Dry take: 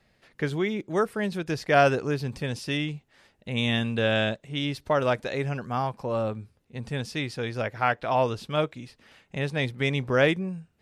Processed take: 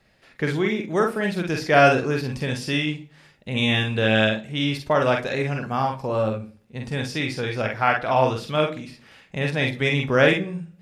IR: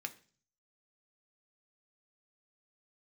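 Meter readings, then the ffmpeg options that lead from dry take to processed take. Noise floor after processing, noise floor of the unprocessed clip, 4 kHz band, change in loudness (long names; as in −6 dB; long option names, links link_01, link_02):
−58 dBFS, −67 dBFS, +5.0 dB, +4.5 dB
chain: -filter_complex "[0:a]asplit=2[link_01][link_02];[1:a]atrim=start_sample=2205,adelay=46[link_03];[link_02][link_03]afir=irnorm=-1:irlink=0,volume=-0.5dB[link_04];[link_01][link_04]amix=inputs=2:normalize=0,volume=3dB"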